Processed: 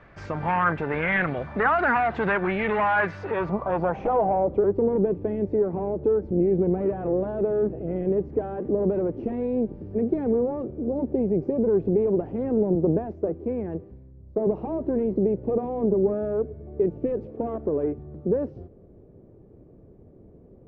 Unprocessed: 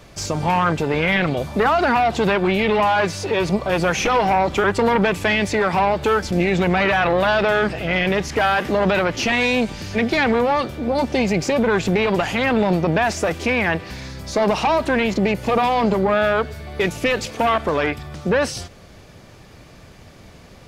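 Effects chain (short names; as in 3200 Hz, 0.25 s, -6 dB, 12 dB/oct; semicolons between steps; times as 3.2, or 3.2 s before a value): low-pass sweep 1700 Hz -> 400 Hz, 3.11–4.77; 12.75–14.47 three-band expander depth 100%; gain -7.5 dB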